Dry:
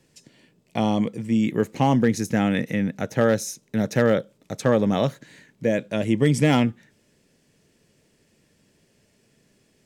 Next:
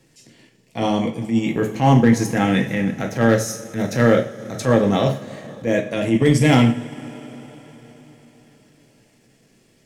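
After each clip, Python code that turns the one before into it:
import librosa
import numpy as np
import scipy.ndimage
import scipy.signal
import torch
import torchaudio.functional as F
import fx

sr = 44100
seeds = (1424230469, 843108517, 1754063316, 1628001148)

y = fx.rev_double_slope(x, sr, seeds[0], early_s=0.43, late_s=4.5, knee_db=-21, drr_db=1.0)
y = fx.transient(y, sr, attack_db=-8, sustain_db=-3)
y = F.gain(torch.from_numpy(y), 3.5).numpy()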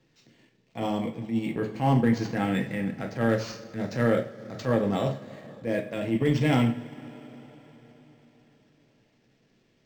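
y = np.interp(np.arange(len(x)), np.arange(len(x))[::4], x[::4])
y = F.gain(torch.from_numpy(y), -8.5).numpy()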